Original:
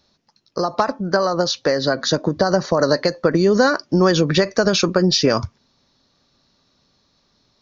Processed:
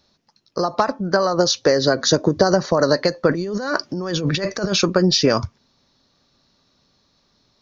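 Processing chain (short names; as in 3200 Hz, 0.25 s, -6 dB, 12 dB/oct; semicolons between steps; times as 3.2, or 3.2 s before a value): 1.38–2.54 fifteen-band EQ 100 Hz +6 dB, 400 Hz +5 dB, 6300 Hz +6 dB; 3.29–4.72 negative-ratio compressor -23 dBFS, ratio -1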